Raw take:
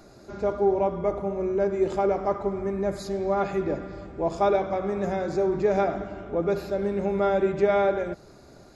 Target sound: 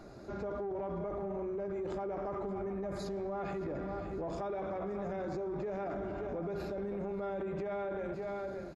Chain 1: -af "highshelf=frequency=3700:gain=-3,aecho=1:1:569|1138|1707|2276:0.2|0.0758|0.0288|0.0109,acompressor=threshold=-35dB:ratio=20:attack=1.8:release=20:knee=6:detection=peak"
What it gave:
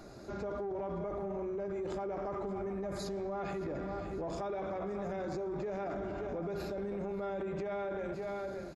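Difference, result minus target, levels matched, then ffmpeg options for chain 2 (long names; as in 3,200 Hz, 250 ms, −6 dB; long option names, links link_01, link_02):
8,000 Hz band +5.5 dB
-af "highshelf=frequency=3700:gain=-10.5,aecho=1:1:569|1138|1707|2276:0.2|0.0758|0.0288|0.0109,acompressor=threshold=-35dB:ratio=20:attack=1.8:release=20:knee=6:detection=peak"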